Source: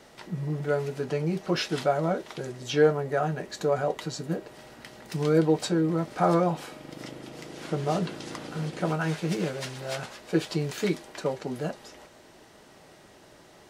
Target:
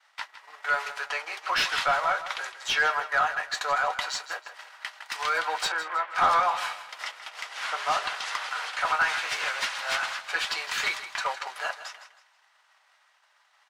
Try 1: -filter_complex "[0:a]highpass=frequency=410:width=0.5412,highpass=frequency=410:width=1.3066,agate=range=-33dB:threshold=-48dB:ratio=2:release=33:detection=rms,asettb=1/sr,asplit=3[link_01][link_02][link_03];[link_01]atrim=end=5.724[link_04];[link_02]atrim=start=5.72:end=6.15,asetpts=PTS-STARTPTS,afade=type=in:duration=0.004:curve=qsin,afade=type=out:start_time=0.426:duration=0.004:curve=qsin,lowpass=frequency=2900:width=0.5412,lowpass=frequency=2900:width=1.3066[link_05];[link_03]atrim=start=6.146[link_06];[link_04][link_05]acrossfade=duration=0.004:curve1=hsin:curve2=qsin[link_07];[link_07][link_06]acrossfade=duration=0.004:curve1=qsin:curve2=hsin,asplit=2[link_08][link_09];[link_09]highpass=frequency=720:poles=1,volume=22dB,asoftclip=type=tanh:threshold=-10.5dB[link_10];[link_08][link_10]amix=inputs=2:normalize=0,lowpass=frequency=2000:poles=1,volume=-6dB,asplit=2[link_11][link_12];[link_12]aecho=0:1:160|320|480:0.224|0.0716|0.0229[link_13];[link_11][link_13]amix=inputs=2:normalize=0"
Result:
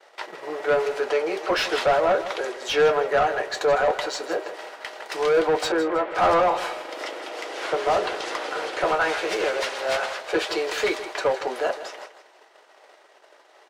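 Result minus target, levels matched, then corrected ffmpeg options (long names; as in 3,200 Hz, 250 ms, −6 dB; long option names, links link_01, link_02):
500 Hz band +12.5 dB
-filter_complex "[0:a]highpass=frequency=970:width=0.5412,highpass=frequency=970:width=1.3066,agate=range=-33dB:threshold=-48dB:ratio=2:release=33:detection=rms,asettb=1/sr,asplit=3[link_01][link_02][link_03];[link_01]atrim=end=5.724[link_04];[link_02]atrim=start=5.72:end=6.15,asetpts=PTS-STARTPTS,afade=type=in:duration=0.004:curve=qsin,afade=type=out:start_time=0.426:duration=0.004:curve=qsin,lowpass=frequency=2900:width=0.5412,lowpass=frequency=2900:width=1.3066[link_05];[link_03]atrim=start=6.146[link_06];[link_04][link_05]acrossfade=duration=0.004:curve1=hsin:curve2=qsin[link_07];[link_07][link_06]acrossfade=duration=0.004:curve1=qsin:curve2=hsin,asplit=2[link_08][link_09];[link_09]highpass=frequency=720:poles=1,volume=22dB,asoftclip=type=tanh:threshold=-10.5dB[link_10];[link_08][link_10]amix=inputs=2:normalize=0,lowpass=frequency=2000:poles=1,volume=-6dB,asplit=2[link_11][link_12];[link_12]aecho=0:1:160|320|480:0.224|0.0716|0.0229[link_13];[link_11][link_13]amix=inputs=2:normalize=0"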